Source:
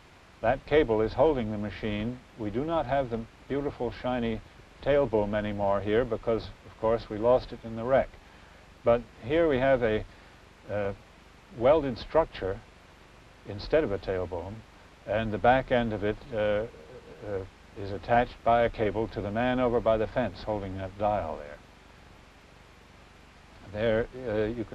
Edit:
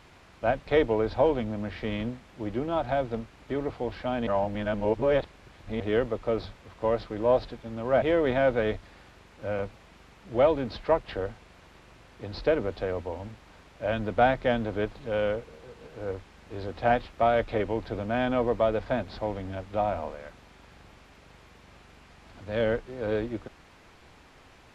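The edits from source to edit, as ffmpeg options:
ffmpeg -i in.wav -filter_complex "[0:a]asplit=4[link_01][link_02][link_03][link_04];[link_01]atrim=end=4.272[link_05];[link_02]atrim=start=4.268:end=5.802,asetpts=PTS-STARTPTS,areverse[link_06];[link_03]atrim=start=5.798:end=8.022[link_07];[link_04]atrim=start=9.278[link_08];[link_05][link_06]acrossfade=duration=0.004:curve1=hsin:curve2=hsin[link_09];[link_09][link_07]acrossfade=duration=0.004:curve1=hsin:curve2=hsin[link_10];[link_10][link_08]acrossfade=duration=0.004:curve1=hsin:curve2=hsin" out.wav

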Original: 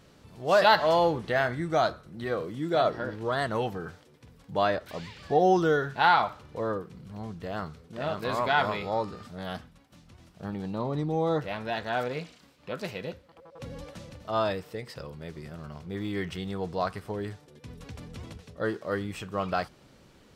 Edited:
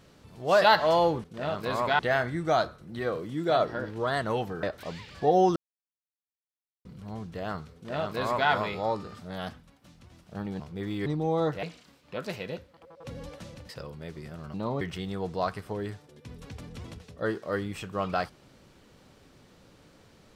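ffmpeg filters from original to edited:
ffmpeg -i in.wav -filter_complex "[0:a]asplit=12[link_01][link_02][link_03][link_04][link_05][link_06][link_07][link_08][link_09][link_10][link_11][link_12];[link_01]atrim=end=1.242[link_13];[link_02]atrim=start=7.828:end=8.582[link_14];[link_03]atrim=start=1.238:end=3.882[link_15];[link_04]atrim=start=4.708:end=5.64,asetpts=PTS-STARTPTS,afade=type=out:start_time=0.928:duration=0.004:curve=hsin[link_16];[link_05]atrim=start=5.64:end=6.93,asetpts=PTS-STARTPTS,volume=0[link_17];[link_06]atrim=start=6.93:end=10.682,asetpts=PTS-STARTPTS,afade=type=in:duration=0.004:curve=hsin[link_18];[link_07]atrim=start=15.738:end=16.202[link_19];[link_08]atrim=start=10.948:end=11.522[link_20];[link_09]atrim=start=12.178:end=14.242[link_21];[link_10]atrim=start=14.888:end=15.742[link_22];[link_11]atrim=start=10.678:end=10.952[link_23];[link_12]atrim=start=16.198[link_24];[link_13][link_14]acrossfade=duration=0.004:curve1=hsin:curve2=hsin[link_25];[link_25][link_15]acrossfade=duration=0.004:curve1=hsin:curve2=hsin[link_26];[link_16][link_17][link_18]concat=n=3:v=0:a=1[link_27];[link_26][link_27]acrossfade=duration=0.004:curve1=hsin:curve2=hsin[link_28];[link_28][link_19]acrossfade=duration=0.004:curve1=hsin:curve2=hsin[link_29];[link_29][link_20]acrossfade=duration=0.004:curve1=hsin:curve2=hsin[link_30];[link_30][link_21]acrossfade=duration=0.004:curve1=hsin:curve2=hsin[link_31];[link_31][link_22]acrossfade=duration=0.004:curve1=hsin:curve2=hsin[link_32];[link_32][link_23]acrossfade=duration=0.004:curve1=hsin:curve2=hsin[link_33];[link_33][link_24]acrossfade=duration=0.004:curve1=hsin:curve2=hsin" out.wav

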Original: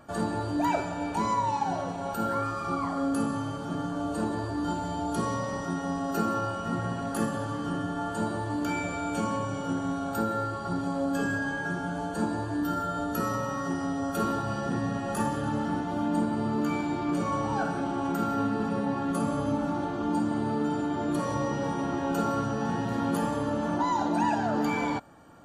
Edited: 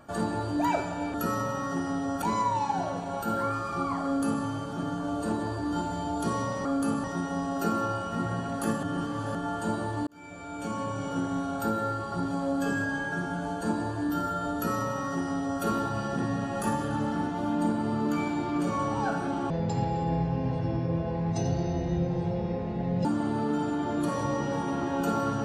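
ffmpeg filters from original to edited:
ffmpeg -i in.wav -filter_complex "[0:a]asplit=10[link_01][link_02][link_03][link_04][link_05][link_06][link_07][link_08][link_09][link_10];[link_01]atrim=end=1.142[link_11];[link_02]atrim=start=13.078:end=14.162[link_12];[link_03]atrim=start=1.138:end=5.572[link_13];[link_04]atrim=start=2.968:end=3.362[link_14];[link_05]atrim=start=5.568:end=7.362[link_15];[link_06]atrim=start=7.358:end=7.882,asetpts=PTS-STARTPTS,areverse[link_16];[link_07]atrim=start=7.878:end=8.6,asetpts=PTS-STARTPTS,afade=type=out:start_time=0.718:duration=0.004:curve=hsin[link_17];[link_08]atrim=start=8.6:end=18.034,asetpts=PTS-STARTPTS,afade=type=in:duration=1.01[link_18];[link_09]atrim=start=18.03:end=20.16,asetpts=PTS-STARTPTS,asetrate=26460,aresample=44100[link_19];[link_10]atrim=start=20.156[link_20];[link_11][link_12]acrossfade=duration=0.004:curve1=hsin:curve2=hsin[link_21];[link_21][link_13]acrossfade=duration=0.004:curve1=hsin:curve2=hsin[link_22];[link_22][link_14]acrossfade=duration=0.004:curve1=hsin:curve2=hsin[link_23];[link_23][link_15]acrossfade=duration=0.004:curve1=hsin:curve2=hsin[link_24];[link_24][link_16]acrossfade=duration=0.004:curve1=hsin:curve2=hsin[link_25];[link_17][link_18]concat=n=2:v=0:a=1[link_26];[link_25][link_26]acrossfade=duration=0.004:curve1=hsin:curve2=hsin[link_27];[link_27][link_19]acrossfade=duration=0.004:curve1=hsin:curve2=hsin[link_28];[link_28][link_20]acrossfade=duration=0.004:curve1=hsin:curve2=hsin" out.wav

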